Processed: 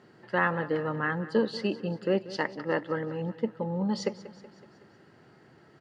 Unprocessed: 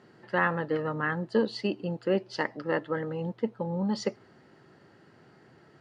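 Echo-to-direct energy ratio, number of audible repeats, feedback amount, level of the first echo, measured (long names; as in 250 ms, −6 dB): −15.0 dB, 4, 56%, −16.5 dB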